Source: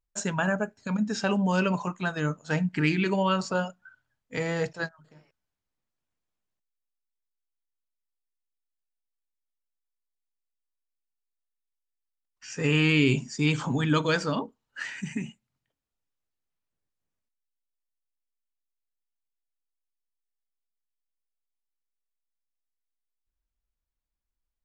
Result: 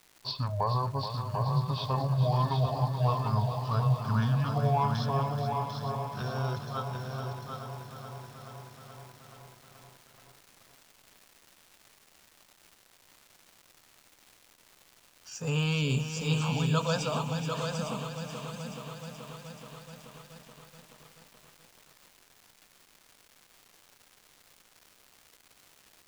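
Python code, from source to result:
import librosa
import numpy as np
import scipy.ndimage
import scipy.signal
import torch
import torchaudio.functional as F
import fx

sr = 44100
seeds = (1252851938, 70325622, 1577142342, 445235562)

p1 = fx.speed_glide(x, sr, from_pct=63, to_pct=126)
p2 = fx.fixed_phaser(p1, sr, hz=810.0, stages=4)
p3 = fx.dmg_crackle(p2, sr, seeds[0], per_s=380.0, level_db=-44.0)
p4 = p3 + fx.echo_single(p3, sr, ms=746, db=-5.5, dry=0)
y = fx.echo_crushed(p4, sr, ms=428, feedback_pct=80, bits=9, wet_db=-9)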